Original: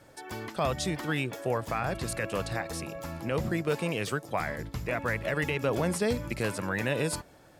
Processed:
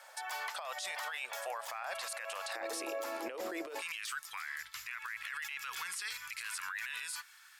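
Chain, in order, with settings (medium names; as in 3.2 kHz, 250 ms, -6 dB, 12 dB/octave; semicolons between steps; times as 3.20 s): inverse Chebyshev high-pass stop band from 350 Hz, stop band 40 dB, from 2.55 s stop band from 180 Hz, from 3.80 s stop band from 660 Hz; compressor with a negative ratio -39 dBFS, ratio -1; peak limiter -32.5 dBFS, peak gain reduction 10.5 dB; trim +2.5 dB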